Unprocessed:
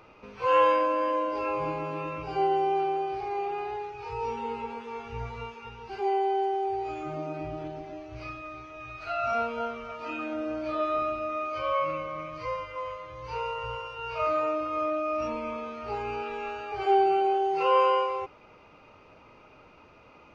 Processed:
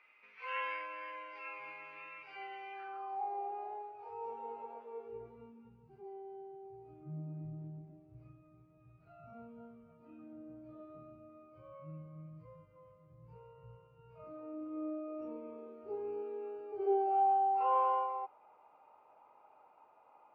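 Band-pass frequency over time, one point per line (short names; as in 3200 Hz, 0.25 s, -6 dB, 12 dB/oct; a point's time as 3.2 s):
band-pass, Q 4.7
2.71 s 2100 Hz
3.32 s 650 Hz
4.8 s 650 Hz
5.85 s 160 Hz
14.07 s 160 Hz
14.99 s 370 Hz
16.79 s 370 Hz
17.26 s 830 Hz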